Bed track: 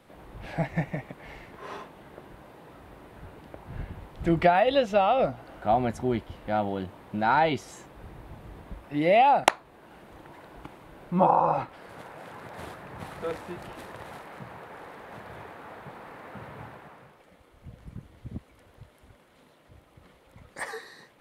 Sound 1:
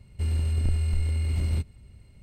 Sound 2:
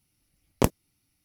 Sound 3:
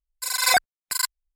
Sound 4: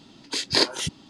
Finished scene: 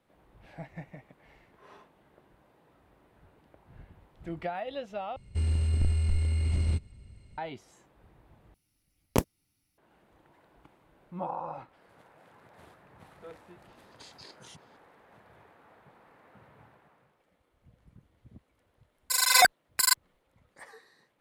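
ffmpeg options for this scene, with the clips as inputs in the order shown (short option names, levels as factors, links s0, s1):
-filter_complex "[0:a]volume=0.188[s0];[1:a]aresample=22050,aresample=44100[s1];[4:a]acompressor=threshold=0.0251:ratio=6:attack=3.2:release=140:knee=1:detection=peak[s2];[3:a]dynaudnorm=f=110:g=3:m=1.78[s3];[s0]asplit=3[s4][s5][s6];[s4]atrim=end=5.164[s7];[s1]atrim=end=2.22,asetpts=PTS-STARTPTS,volume=0.841[s8];[s5]atrim=start=7.376:end=8.544[s9];[2:a]atrim=end=1.24,asetpts=PTS-STARTPTS,volume=0.668[s10];[s6]atrim=start=9.776[s11];[s2]atrim=end=1.09,asetpts=PTS-STARTPTS,volume=0.168,afade=t=in:d=0.004:c=hsin,afade=t=out:st=1.086:d=0.004:c=hsin,adelay=13680[s12];[s3]atrim=end=1.35,asetpts=PTS-STARTPTS,volume=0.708,afade=t=in:d=0.004:c=hsin,afade=t=out:st=1.346:d=0.004:c=hsin,adelay=18880[s13];[s7][s8]acrossfade=d=0.004:c1=hsin:c2=hsin[s14];[s14][s9]acrossfade=d=0.004:c1=hsin:c2=hsin[s15];[s15][s10]acrossfade=d=0.004:c1=hsin:c2=hsin[s16];[s16][s11]acrossfade=d=0.004:c1=hsin:c2=hsin[s17];[s17][s12][s13]amix=inputs=3:normalize=0"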